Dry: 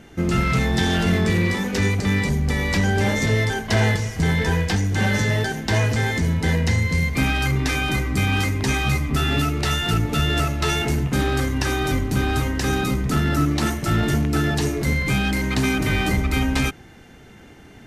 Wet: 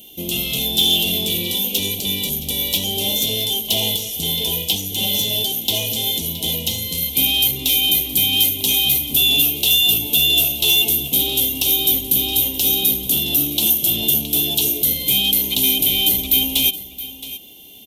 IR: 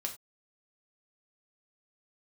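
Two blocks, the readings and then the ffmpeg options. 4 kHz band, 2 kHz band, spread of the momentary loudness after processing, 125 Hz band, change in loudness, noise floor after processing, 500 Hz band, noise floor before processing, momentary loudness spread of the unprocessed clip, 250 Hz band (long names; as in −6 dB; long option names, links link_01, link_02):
+13.5 dB, −4.5 dB, 7 LU, −12.5 dB, +5.5 dB, −36 dBFS, −5.0 dB, −45 dBFS, 2 LU, −6.5 dB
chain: -filter_complex "[0:a]aexciter=amount=12.9:drive=4.1:freq=2400,firequalizer=gain_entry='entry(120,0);entry(230,8);entry(650,9);entry(990,2);entry(1500,-24);entry(2300,-5);entry(3300,14);entry(4700,-21);entry(7600,-28);entry(15000,-2)':delay=0.05:min_phase=1,asplit=2[link_01][link_02];[link_02]aecho=0:1:670:0.168[link_03];[link_01][link_03]amix=inputs=2:normalize=0,aexciter=amount=14.8:drive=5:freq=5200,volume=-13.5dB"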